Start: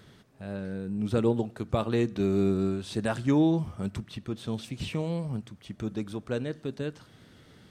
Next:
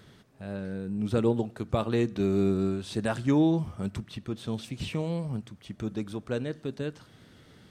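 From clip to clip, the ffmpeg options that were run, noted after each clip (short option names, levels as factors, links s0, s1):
-af anull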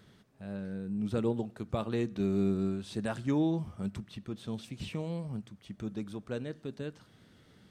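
-af "equalizer=f=200:t=o:w=0.24:g=4.5,volume=0.501"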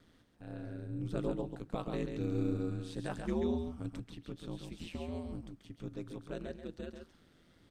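-af "aeval=exprs='val(0)*sin(2*PI*83*n/s)':c=same,aecho=1:1:136:0.501,volume=0.75"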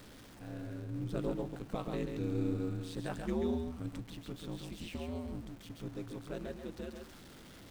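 -af "aeval=exprs='val(0)+0.5*0.00376*sgn(val(0))':c=same,volume=0.891"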